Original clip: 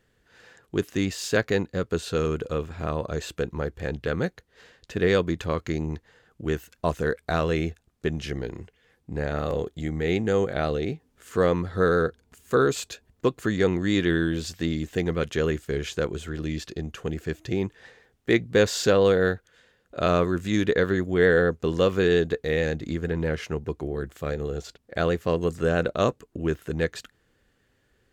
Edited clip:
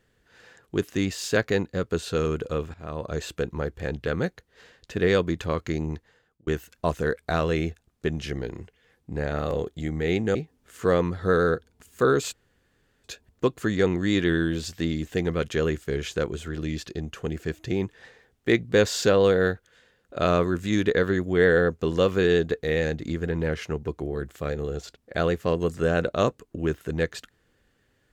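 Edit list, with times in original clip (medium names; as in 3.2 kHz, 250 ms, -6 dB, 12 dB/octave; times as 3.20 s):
2.74–3.16 s: fade in, from -16.5 dB
5.91–6.47 s: fade out
10.35–10.87 s: delete
12.85 s: insert room tone 0.71 s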